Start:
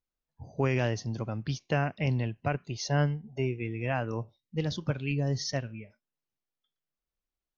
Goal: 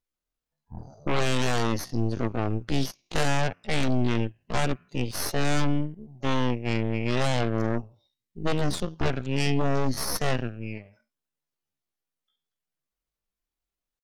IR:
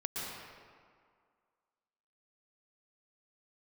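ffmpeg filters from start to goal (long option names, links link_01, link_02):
-filter_complex "[0:a]aeval=exprs='0.168*(cos(1*acos(clip(val(0)/0.168,-1,1)))-cos(1*PI/2))+0.00422*(cos(2*acos(clip(val(0)/0.168,-1,1)))-cos(2*PI/2))+0.00841*(cos(6*acos(clip(val(0)/0.168,-1,1)))-cos(6*PI/2))+0.075*(cos(8*acos(clip(val(0)/0.168,-1,1)))-cos(8*PI/2))':channel_layout=same,atempo=0.54,asplit=2[link_01][link_02];[link_02]asoftclip=type=tanh:threshold=-26.5dB,volume=-4dB[link_03];[link_01][link_03]amix=inputs=2:normalize=0,volume=-2dB" -ar 44100 -c:a ac3 -b:a 96k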